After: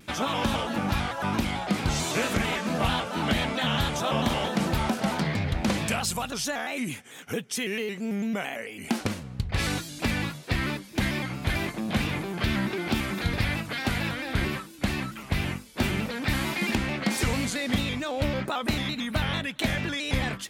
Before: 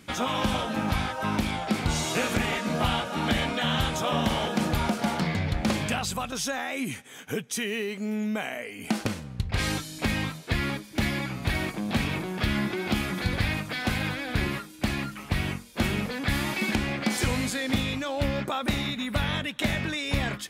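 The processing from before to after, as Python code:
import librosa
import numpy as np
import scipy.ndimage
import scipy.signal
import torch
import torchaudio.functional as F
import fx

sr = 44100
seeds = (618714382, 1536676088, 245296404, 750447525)

y = fx.high_shelf(x, sr, hz=5500.0, db=6.0, at=(5.88, 6.31))
y = fx.vibrato_shape(y, sr, shape='square', rate_hz=4.5, depth_cents=100.0)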